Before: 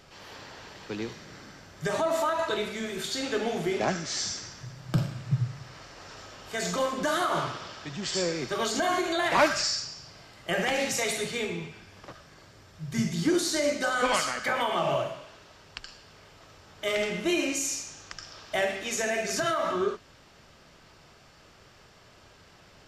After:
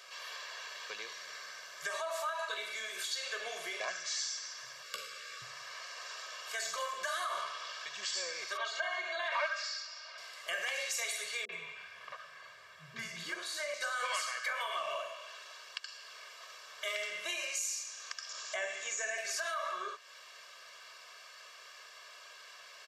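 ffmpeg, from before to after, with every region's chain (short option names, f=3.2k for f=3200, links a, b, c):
-filter_complex "[0:a]asettb=1/sr,asplit=3[a][b][c];[a]atrim=end=4.834[d];[b]atrim=start=4.83:end=5.42,asetpts=PTS-STARTPTS,afade=t=in:d=0.004:c=qsin,afade=t=out:st=0.586:d=0.004:c=qsin,afreqshift=-130,asuperstop=centerf=850:order=20:qfactor=1.8,asplit=2[e][f];[f]adelay=15,volume=-5.5dB[g];[e][g]amix=inputs=2:normalize=0,atrim=end_sample=26019[h];[c]atrim=start=5.416[i];[d][h]acrossfade=d=0.004:c1=hsin:c2=qsin[j];[j][i]acrossfade=d=0.004:c1=qsin:c2=hsin,asettb=1/sr,asplit=3[k][l][m];[k]atrim=end=8.574[n];[l]atrim=start=8.57:end=10.18,asetpts=PTS-STARTPTS,afade=t=in:d=0.004:c=qsin,afade=t=out:st=1.606:d=0.004:c=qsin,highpass=440,lowpass=3.4k,aecho=1:1:3.2:0.67,atrim=end_sample=71001[o];[m]atrim=start=10.176[p];[n][o]acrossfade=d=0.004:c1=hsin:c2=qsin[q];[q][p]acrossfade=d=0.004:c1=qsin:c2=hsin,asettb=1/sr,asplit=3[r][s][t];[r]atrim=end=11.454[u];[s]atrim=start=11.45:end=13.74,asetpts=PTS-STARTPTS,afade=t=in:d=0.004:c=qsin,afade=t=out:st=2.286:d=0.004:c=qsin,bass=f=250:g=11,treble=f=4k:g=-9,acrossover=split=380|5400[v][w][x];[w]adelay=40[y];[x]adelay=70[z];[v][y][z]amix=inputs=3:normalize=0,atrim=end_sample=100989[aa];[t]atrim=start=13.736[ab];[u][aa]acrossfade=d=0.004:c1=hsin:c2=qsin[ac];[ac][ab]acrossfade=d=0.004:c1=qsin:c2=hsin,asettb=1/sr,asplit=3[ad][ae][af];[ad]atrim=end=18.294[ag];[ae]atrim=start=18.29:end=19.18,asetpts=PTS-STARTPTS,afade=t=in:d=0.004:c=qsin,afade=t=out:st=0.886:d=0.004:c=qsin,acrossover=split=2700[ah][ai];[ai]acompressor=threshold=-48dB:ratio=4:attack=1:release=60[aj];[ah][aj]amix=inputs=2:normalize=0,lowpass=f=7.1k:t=q:w=6.9,lowshelf=f=220:g=9.5[ak];[af]atrim=start=19.176[al];[ag][ak]acrossfade=d=0.004:c1=hsin:c2=qsin[am];[am][al]acrossfade=d=0.004:c1=qsin:c2=hsin,highpass=1.1k,aecho=1:1:1.8:0.88,acompressor=threshold=-46dB:ratio=2,volume=3dB"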